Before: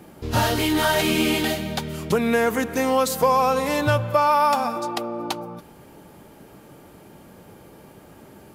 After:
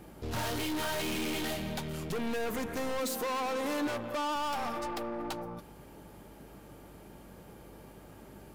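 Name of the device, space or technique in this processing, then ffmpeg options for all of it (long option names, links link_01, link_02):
valve amplifier with mains hum: -filter_complex "[0:a]aeval=exprs='(tanh(25.1*val(0)+0.4)-tanh(0.4))/25.1':channel_layout=same,aeval=exprs='val(0)+0.00224*(sin(2*PI*50*n/s)+sin(2*PI*2*50*n/s)/2+sin(2*PI*3*50*n/s)/3+sin(2*PI*4*50*n/s)/4+sin(2*PI*5*50*n/s)/5)':channel_layout=same,asettb=1/sr,asplit=3[link_01][link_02][link_03];[link_01]atrim=end=2.994[link_04];[link_02]atrim=start=2.99:end=4.36,asetpts=PTS-STARTPTS,afade=type=in:duration=0.004:curve=qsin,afade=type=out:start_time=1.366:duration=0.004:curve=qsin,lowshelf=frequency=190:width_type=q:width=3:gain=-8.5[link_05];[link_03]atrim=start=4.356[link_06];[link_04][link_05]acrossfade=duration=0.004:curve1=hsin:curve2=qsin[link_07];[link_07][link_06]acrossfade=duration=0.004:curve1=qsin:curve2=hsin,volume=-4dB"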